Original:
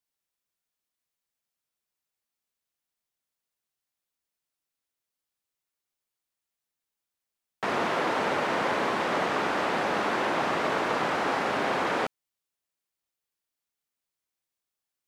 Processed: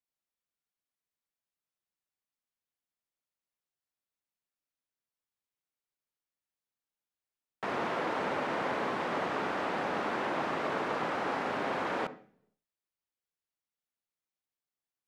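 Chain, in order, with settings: high shelf 3800 Hz -6.5 dB; on a send: reverb, pre-delay 47 ms, DRR 14.5 dB; on the sum: gain -5.5 dB

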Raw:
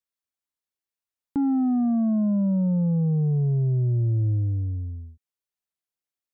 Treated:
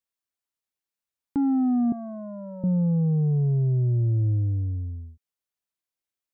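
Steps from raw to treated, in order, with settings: 1.92–2.64 HPF 510 Hz 12 dB/oct

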